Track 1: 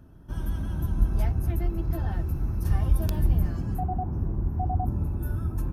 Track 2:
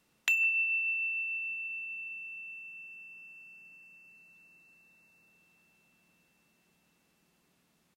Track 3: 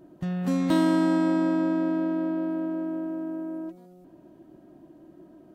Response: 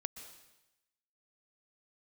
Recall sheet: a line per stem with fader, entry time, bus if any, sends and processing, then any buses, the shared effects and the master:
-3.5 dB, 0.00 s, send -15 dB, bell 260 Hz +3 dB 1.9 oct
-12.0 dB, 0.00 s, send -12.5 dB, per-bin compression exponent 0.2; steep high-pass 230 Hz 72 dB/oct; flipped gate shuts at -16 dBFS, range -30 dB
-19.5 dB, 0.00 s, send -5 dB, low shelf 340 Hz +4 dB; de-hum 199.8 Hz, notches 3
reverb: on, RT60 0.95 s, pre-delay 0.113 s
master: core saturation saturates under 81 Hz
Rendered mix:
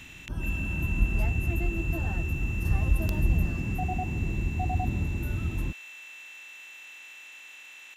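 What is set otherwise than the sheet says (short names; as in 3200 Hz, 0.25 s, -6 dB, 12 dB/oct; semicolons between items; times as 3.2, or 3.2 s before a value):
stem 2: send off; stem 3: muted; master: missing core saturation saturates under 81 Hz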